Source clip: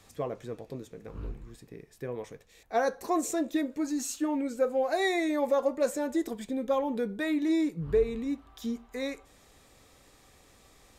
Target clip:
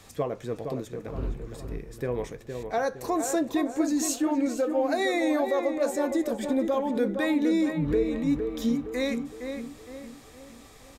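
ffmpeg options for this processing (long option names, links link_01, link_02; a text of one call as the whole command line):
ffmpeg -i in.wav -filter_complex "[0:a]alimiter=level_in=0.5dB:limit=-24dB:level=0:latency=1:release=319,volume=-0.5dB,asplit=2[link_01][link_02];[link_02]adelay=463,lowpass=frequency=2000:poles=1,volume=-6dB,asplit=2[link_03][link_04];[link_04]adelay=463,lowpass=frequency=2000:poles=1,volume=0.46,asplit=2[link_05][link_06];[link_06]adelay=463,lowpass=frequency=2000:poles=1,volume=0.46,asplit=2[link_07][link_08];[link_08]adelay=463,lowpass=frequency=2000:poles=1,volume=0.46,asplit=2[link_09][link_10];[link_10]adelay=463,lowpass=frequency=2000:poles=1,volume=0.46,asplit=2[link_11][link_12];[link_12]adelay=463,lowpass=frequency=2000:poles=1,volume=0.46[link_13];[link_01][link_03][link_05][link_07][link_09][link_11][link_13]amix=inputs=7:normalize=0,volume=6.5dB" out.wav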